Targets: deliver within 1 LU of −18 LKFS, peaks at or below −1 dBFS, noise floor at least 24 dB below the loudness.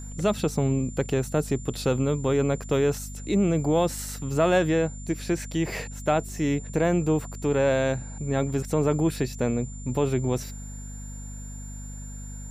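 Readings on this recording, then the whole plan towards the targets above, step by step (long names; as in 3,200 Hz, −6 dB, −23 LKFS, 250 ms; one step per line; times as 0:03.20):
mains hum 50 Hz; hum harmonics up to 250 Hz; level of the hum −36 dBFS; interfering tone 7,200 Hz; level of the tone −44 dBFS; integrated loudness −26.0 LKFS; sample peak −11.0 dBFS; target loudness −18.0 LKFS
→ hum removal 50 Hz, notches 5
notch filter 7,200 Hz, Q 30
level +8 dB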